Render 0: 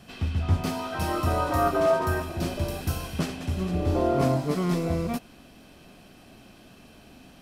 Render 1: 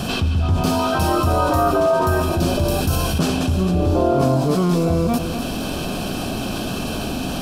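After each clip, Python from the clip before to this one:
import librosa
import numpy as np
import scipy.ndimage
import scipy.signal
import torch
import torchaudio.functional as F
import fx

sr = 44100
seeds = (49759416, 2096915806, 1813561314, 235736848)

y = fx.peak_eq(x, sr, hz=2000.0, db=-15.0, octaves=0.3)
y = y + 10.0 ** (-21.5 / 20.0) * np.pad(y, (int(249 * sr / 1000.0), 0))[:len(y)]
y = fx.env_flatten(y, sr, amount_pct=70)
y = F.gain(torch.from_numpy(y), 2.5).numpy()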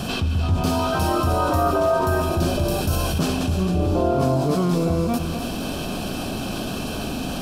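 y = x + 10.0 ** (-11.5 / 20.0) * np.pad(x, (int(298 * sr / 1000.0), 0))[:len(x)]
y = F.gain(torch.from_numpy(y), -3.0).numpy()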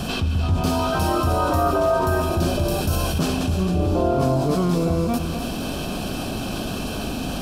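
y = fx.add_hum(x, sr, base_hz=50, snr_db=16)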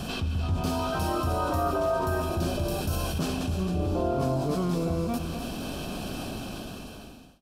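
y = fx.fade_out_tail(x, sr, length_s=1.17)
y = F.gain(torch.from_numpy(y), -7.0).numpy()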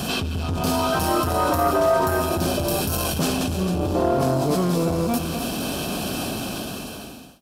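y = fx.highpass(x, sr, hz=120.0, slope=6)
y = fx.high_shelf(y, sr, hz=7500.0, db=7.5)
y = fx.transformer_sat(y, sr, knee_hz=410.0)
y = F.gain(torch.from_numpy(y), 8.5).numpy()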